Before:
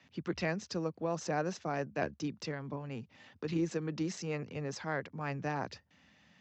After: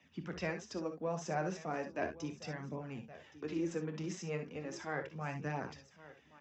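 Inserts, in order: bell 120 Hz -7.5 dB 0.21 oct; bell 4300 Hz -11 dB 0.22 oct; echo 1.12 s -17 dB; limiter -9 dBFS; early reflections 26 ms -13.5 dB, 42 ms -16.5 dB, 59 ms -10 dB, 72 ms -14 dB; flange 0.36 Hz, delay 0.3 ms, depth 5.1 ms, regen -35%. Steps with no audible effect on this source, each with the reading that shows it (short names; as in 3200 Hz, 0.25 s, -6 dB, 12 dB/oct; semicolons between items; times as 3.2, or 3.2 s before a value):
limiter -9 dBFS: input peak -20.0 dBFS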